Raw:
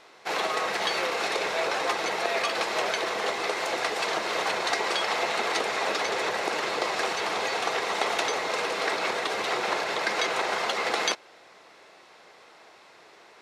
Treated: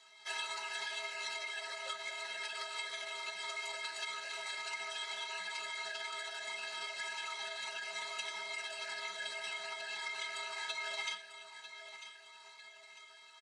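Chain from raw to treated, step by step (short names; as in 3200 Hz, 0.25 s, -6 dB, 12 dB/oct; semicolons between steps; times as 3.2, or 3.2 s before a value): low shelf 170 Hz +6.5 dB; metallic resonator 250 Hz, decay 0.24 s, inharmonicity 0.03; de-hum 327.8 Hz, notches 32; on a send at -8.5 dB: reverb RT60 0.50 s, pre-delay 5 ms; on the sum: compressor 3:1, threshold -41 dBFS, peak gain reduction 7.5 dB; feedback echo 0.947 s, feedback 37%, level -14 dB; vocal rider within 4 dB 2 s; formant-preserving pitch shift -4.5 st; weighting filter ITU-R 468; gain -2 dB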